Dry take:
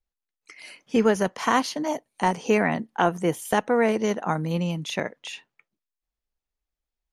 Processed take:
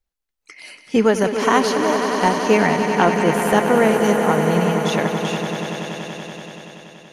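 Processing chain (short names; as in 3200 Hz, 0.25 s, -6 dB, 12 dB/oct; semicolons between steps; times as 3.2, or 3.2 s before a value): swelling echo 95 ms, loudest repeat 5, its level -10 dB; gain +4.5 dB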